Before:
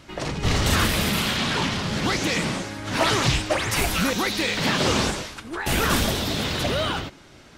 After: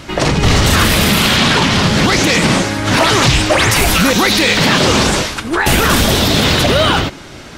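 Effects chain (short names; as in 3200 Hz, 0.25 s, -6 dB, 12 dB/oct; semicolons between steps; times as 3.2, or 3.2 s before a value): maximiser +17 dB; gain -1.5 dB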